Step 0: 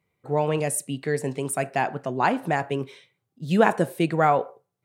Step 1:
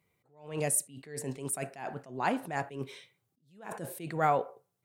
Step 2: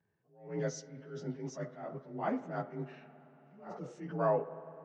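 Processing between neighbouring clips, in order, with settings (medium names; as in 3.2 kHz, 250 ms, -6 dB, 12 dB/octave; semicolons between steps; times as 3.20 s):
treble shelf 6 kHz +7 dB; in parallel at +2.5 dB: compression, threshold -31 dBFS, peak gain reduction 17 dB; on the sum: attacks held to a fixed rise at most 120 dB/s; trim -8.5 dB
frequency axis rescaled in octaves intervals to 88%; tape spacing loss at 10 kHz 28 dB; reverberation RT60 4.1 s, pre-delay 51 ms, DRR 14 dB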